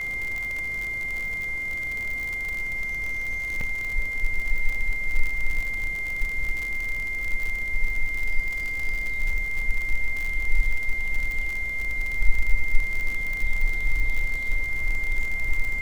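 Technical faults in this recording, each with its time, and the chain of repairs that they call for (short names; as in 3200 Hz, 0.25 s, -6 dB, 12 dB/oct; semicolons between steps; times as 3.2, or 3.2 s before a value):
crackle 57/s -26 dBFS
tone 2100 Hz -27 dBFS
3.61 gap 2.9 ms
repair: de-click; notch 2100 Hz, Q 30; interpolate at 3.61, 2.9 ms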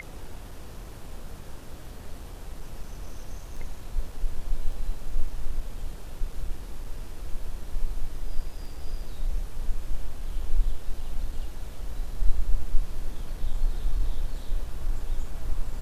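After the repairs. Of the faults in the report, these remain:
none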